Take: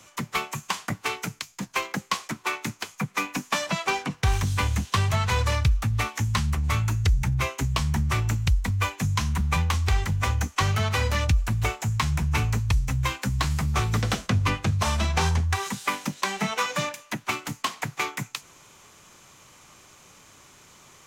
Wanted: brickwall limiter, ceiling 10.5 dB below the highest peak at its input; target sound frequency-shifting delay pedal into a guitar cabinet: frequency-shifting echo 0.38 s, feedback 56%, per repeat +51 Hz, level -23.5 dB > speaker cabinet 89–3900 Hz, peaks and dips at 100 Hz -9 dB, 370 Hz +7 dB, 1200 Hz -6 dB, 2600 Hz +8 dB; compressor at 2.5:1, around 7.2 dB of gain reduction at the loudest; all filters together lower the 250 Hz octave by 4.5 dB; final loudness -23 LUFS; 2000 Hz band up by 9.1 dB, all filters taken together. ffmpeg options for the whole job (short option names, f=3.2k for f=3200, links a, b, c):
-filter_complex "[0:a]equalizer=f=250:t=o:g=-7.5,equalizer=f=2k:t=o:g=7.5,acompressor=threshold=-28dB:ratio=2.5,alimiter=limit=-21.5dB:level=0:latency=1,asplit=5[a][b][c][d][e];[b]adelay=380,afreqshift=51,volume=-23.5dB[f];[c]adelay=760,afreqshift=102,volume=-28.5dB[g];[d]adelay=1140,afreqshift=153,volume=-33.6dB[h];[e]adelay=1520,afreqshift=204,volume=-38.6dB[i];[a][f][g][h][i]amix=inputs=5:normalize=0,highpass=89,equalizer=f=100:t=q:w=4:g=-9,equalizer=f=370:t=q:w=4:g=7,equalizer=f=1.2k:t=q:w=4:g=-6,equalizer=f=2.6k:t=q:w=4:g=8,lowpass=f=3.9k:w=0.5412,lowpass=f=3.9k:w=1.3066,volume=9dB"